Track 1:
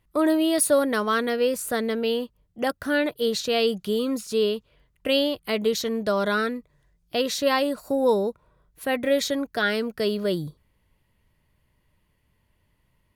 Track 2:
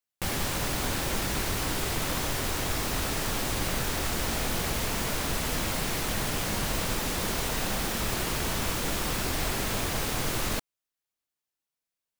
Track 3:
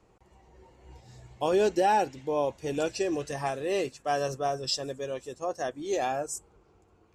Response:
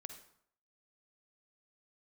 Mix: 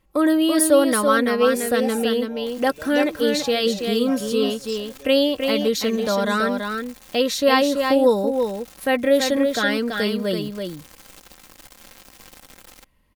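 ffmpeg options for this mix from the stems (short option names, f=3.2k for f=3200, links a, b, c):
-filter_complex "[0:a]volume=2dB,asplit=3[a][b][c];[b]volume=-5.5dB[d];[1:a]aecho=1:1:5.7:0.37,alimiter=limit=-23dB:level=0:latency=1:release=82,acrusher=bits=3:mix=0:aa=0.5,adelay=2250,volume=-4dB[e];[2:a]asplit=2[f][g];[g]adelay=3.1,afreqshift=-0.29[h];[f][h]amix=inputs=2:normalize=1,volume=-6dB[i];[c]apad=whole_len=637380[j];[e][j]sidechaincompress=threshold=-32dB:ratio=8:attack=41:release=138[k];[d]aecho=0:1:332:1[l];[a][k][i][l]amix=inputs=4:normalize=0,aecho=1:1:3.8:0.46"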